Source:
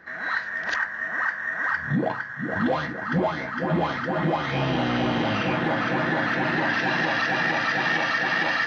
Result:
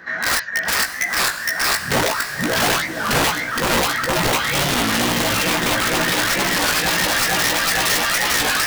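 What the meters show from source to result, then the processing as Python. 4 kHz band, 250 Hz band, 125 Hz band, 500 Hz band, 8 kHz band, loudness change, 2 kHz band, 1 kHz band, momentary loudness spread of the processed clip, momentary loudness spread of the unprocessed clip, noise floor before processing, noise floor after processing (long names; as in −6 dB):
+14.0 dB, +1.0 dB, +1.0 dB, +4.0 dB, can't be measured, +6.5 dB, +4.5 dB, +5.0 dB, 3 LU, 5 LU, −34 dBFS, −28 dBFS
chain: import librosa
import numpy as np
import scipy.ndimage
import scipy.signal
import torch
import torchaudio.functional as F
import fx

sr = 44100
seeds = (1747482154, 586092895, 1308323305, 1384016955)

p1 = fx.dereverb_blind(x, sr, rt60_s=1.6)
p2 = scipy.signal.sosfilt(scipy.signal.butter(2, 48.0, 'highpass', fs=sr, output='sos'), p1)
p3 = fx.high_shelf(p2, sr, hz=2600.0, db=9.0)
p4 = fx.rider(p3, sr, range_db=10, speed_s=0.5)
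p5 = p3 + F.gain(torch.from_numpy(p4), -1.0).numpy()
p6 = (np.mod(10.0 ** (14.0 / 20.0) * p5 + 1.0, 2.0) - 1.0) / 10.0 ** (14.0 / 20.0)
p7 = fx.doubler(p6, sr, ms=17.0, db=-5)
p8 = fx.echo_diffused(p7, sr, ms=534, feedback_pct=50, wet_db=-9.5)
y = fx.record_warp(p8, sr, rpm=33.33, depth_cents=160.0)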